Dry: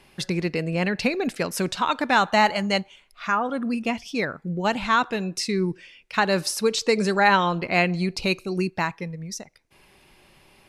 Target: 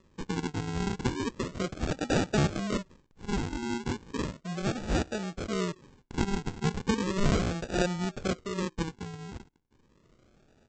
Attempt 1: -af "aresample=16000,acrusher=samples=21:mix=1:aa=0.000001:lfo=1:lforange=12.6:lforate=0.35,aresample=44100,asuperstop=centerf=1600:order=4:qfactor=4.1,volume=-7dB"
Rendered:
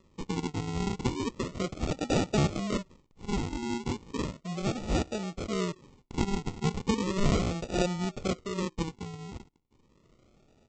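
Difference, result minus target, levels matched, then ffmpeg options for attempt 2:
2000 Hz band -3.0 dB
-af "aresample=16000,acrusher=samples=21:mix=1:aa=0.000001:lfo=1:lforange=12.6:lforate=0.35,aresample=44100,volume=-7dB"

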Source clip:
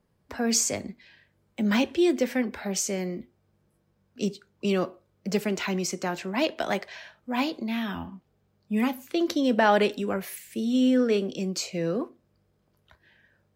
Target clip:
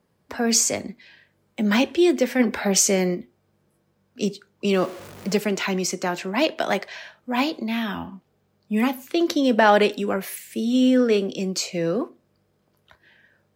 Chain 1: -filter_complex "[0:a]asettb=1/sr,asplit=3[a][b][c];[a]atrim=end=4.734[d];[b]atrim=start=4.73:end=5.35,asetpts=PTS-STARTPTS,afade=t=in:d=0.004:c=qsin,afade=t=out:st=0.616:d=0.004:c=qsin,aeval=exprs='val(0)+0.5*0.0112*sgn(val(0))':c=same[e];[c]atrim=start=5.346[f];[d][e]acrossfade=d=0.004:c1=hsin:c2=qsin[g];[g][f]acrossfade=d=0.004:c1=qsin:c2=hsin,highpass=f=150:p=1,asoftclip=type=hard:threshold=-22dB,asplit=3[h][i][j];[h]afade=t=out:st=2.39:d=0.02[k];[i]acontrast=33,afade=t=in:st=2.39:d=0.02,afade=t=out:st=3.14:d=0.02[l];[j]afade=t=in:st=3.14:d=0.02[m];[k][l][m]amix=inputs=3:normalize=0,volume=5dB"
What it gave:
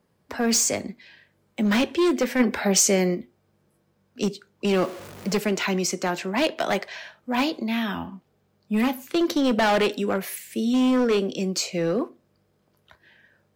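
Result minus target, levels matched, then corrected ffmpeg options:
hard clip: distortion +35 dB
-filter_complex "[0:a]asettb=1/sr,asplit=3[a][b][c];[a]atrim=end=4.734[d];[b]atrim=start=4.73:end=5.35,asetpts=PTS-STARTPTS,afade=t=in:d=0.004:c=qsin,afade=t=out:st=0.616:d=0.004:c=qsin,aeval=exprs='val(0)+0.5*0.0112*sgn(val(0))':c=same[e];[c]atrim=start=5.346[f];[d][e]acrossfade=d=0.004:c1=hsin:c2=qsin[g];[g][f]acrossfade=d=0.004:c1=qsin:c2=hsin,highpass=f=150:p=1,asoftclip=type=hard:threshold=-10.5dB,asplit=3[h][i][j];[h]afade=t=out:st=2.39:d=0.02[k];[i]acontrast=33,afade=t=in:st=2.39:d=0.02,afade=t=out:st=3.14:d=0.02[l];[j]afade=t=in:st=3.14:d=0.02[m];[k][l][m]amix=inputs=3:normalize=0,volume=5dB"

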